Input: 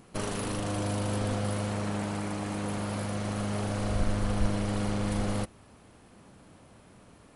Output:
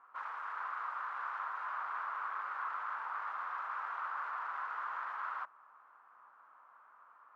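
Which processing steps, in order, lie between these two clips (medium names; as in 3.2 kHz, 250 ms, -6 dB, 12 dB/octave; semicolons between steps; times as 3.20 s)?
integer overflow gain 31.5 dB; Butterworth band-pass 1.2 kHz, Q 2.5; trim +6 dB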